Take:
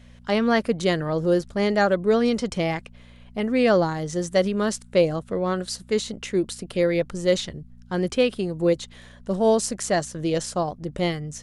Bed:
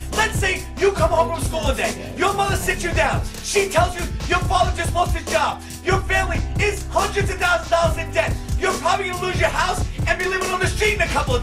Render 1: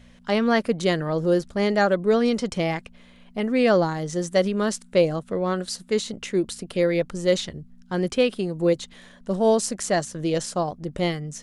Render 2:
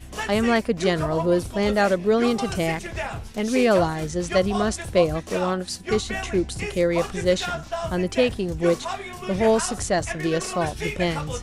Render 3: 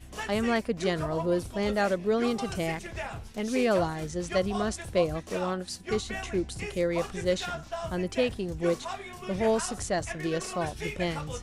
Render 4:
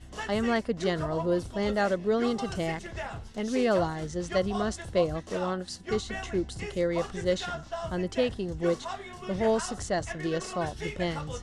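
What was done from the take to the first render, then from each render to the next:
hum removal 60 Hz, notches 2
mix in bed −11.5 dB
level −6.5 dB
Bessel low-pass filter 7,600 Hz, order 4; notch filter 2,400 Hz, Q 7.7

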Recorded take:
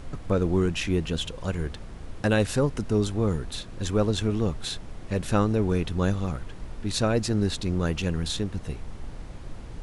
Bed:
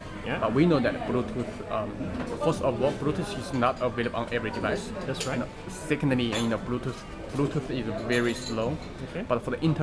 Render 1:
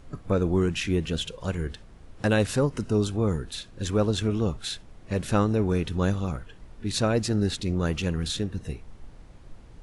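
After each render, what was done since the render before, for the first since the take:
noise reduction from a noise print 9 dB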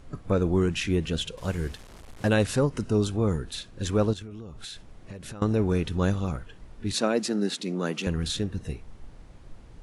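0:01.37–0:02.29: linear delta modulator 64 kbit/s, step −42 dBFS
0:04.13–0:05.42: downward compressor 20 to 1, threshold −35 dBFS
0:06.93–0:08.07: Butterworth high-pass 180 Hz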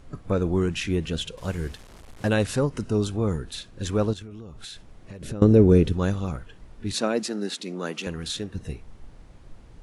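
0:05.21–0:05.93: low shelf with overshoot 640 Hz +8 dB, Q 1.5
0:07.23–0:08.55: low-shelf EQ 180 Hz −10 dB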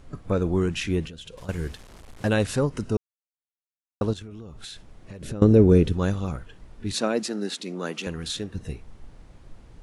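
0:01.07–0:01.49: downward compressor 10 to 1, threshold −37 dBFS
0:02.97–0:04.01: silence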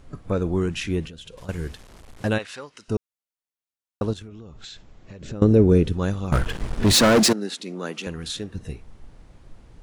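0:02.37–0:02.88: resonant band-pass 1,800 Hz → 4,600 Hz, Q 0.88
0:04.29–0:05.33: elliptic low-pass filter 7,400 Hz
0:06.32–0:07.33: leveller curve on the samples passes 5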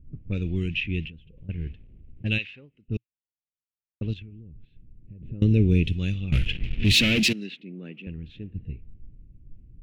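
low-pass that shuts in the quiet parts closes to 320 Hz, open at −17 dBFS
drawn EQ curve 120 Hz 0 dB, 310 Hz −7 dB, 1,000 Hz −27 dB, 1,500 Hz −17 dB, 2,600 Hz +11 dB, 4,500 Hz −5 dB, 9,100 Hz −13 dB, 13,000 Hz −7 dB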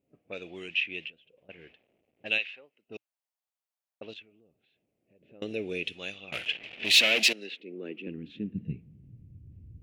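high-pass filter sweep 670 Hz → 80 Hz, 0:07.22–0:09.57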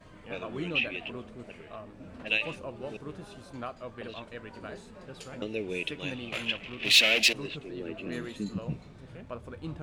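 mix in bed −14 dB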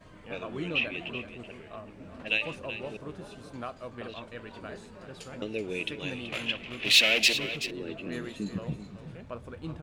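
single-tap delay 379 ms −11.5 dB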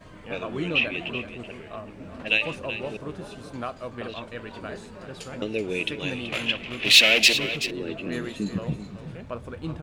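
level +5.5 dB

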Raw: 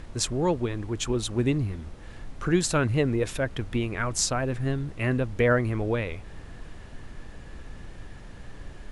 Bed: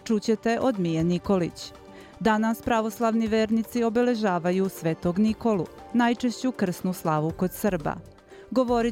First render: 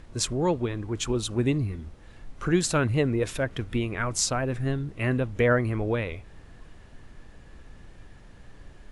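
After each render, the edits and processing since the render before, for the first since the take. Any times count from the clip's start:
noise reduction from a noise print 6 dB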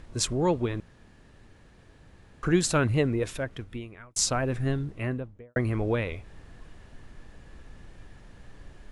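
0:00.80–0:02.43: fill with room tone
0:02.94–0:04.16: fade out
0:04.73–0:05.56: fade out and dull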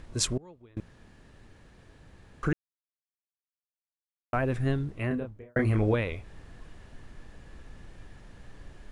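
0:00.37–0:00.77: gate with flip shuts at −25 dBFS, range −26 dB
0:02.53–0:04.33: silence
0:05.08–0:05.94: double-tracking delay 28 ms −3.5 dB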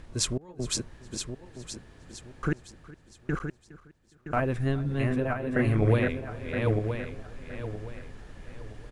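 feedback delay that plays each chunk backwards 485 ms, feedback 54%, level −2 dB
repeating echo 413 ms, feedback 22%, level −20 dB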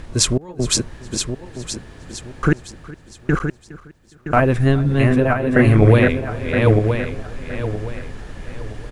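level +12 dB
brickwall limiter −1 dBFS, peak gain reduction 2 dB

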